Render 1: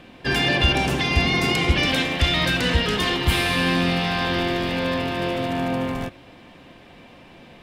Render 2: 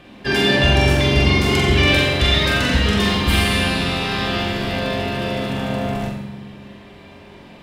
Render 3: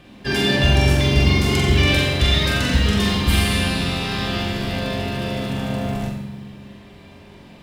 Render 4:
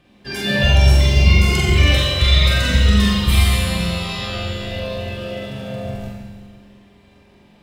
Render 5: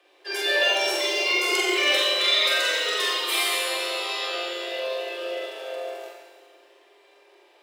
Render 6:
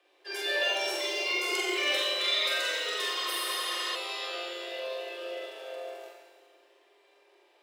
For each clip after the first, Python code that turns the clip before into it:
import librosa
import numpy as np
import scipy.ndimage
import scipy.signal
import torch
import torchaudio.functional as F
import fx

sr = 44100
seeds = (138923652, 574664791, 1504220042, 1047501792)

y1 = fx.room_flutter(x, sr, wall_m=7.6, rt60_s=0.54)
y1 = fx.rev_fdn(y1, sr, rt60_s=1.6, lf_ratio=1.5, hf_ratio=0.55, size_ms=15.0, drr_db=1.5)
y2 = fx.bass_treble(y1, sr, bass_db=5, treble_db=5)
y2 = fx.quant_companded(y2, sr, bits=8)
y2 = F.gain(torch.from_numpy(y2), -4.0).numpy()
y3 = fx.noise_reduce_blind(y2, sr, reduce_db=10)
y3 = fx.rev_schroeder(y3, sr, rt60_s=1.7, comb_ms=31, drr_db=2.5)
y3 = F.gain(torch.from_numpy(y3), 1.0).numpy()
y4 = scipy.signal.sosfilt(scipy.signal.butter(16, 330.0, 'highpass', fs=sr, output='sos'), y3)
y4 = F.gain(torch.from_numpy(y4), -1.5).numpy()
y5 = fx.spec_repair(y4, sr, seeds[0], start_s=3.18, length_s=0.75, low_hz=490.0, high_hz=8200.0, source='before')
y5 = F.gain(torch.from_numpy(y5), -7.0).numpy()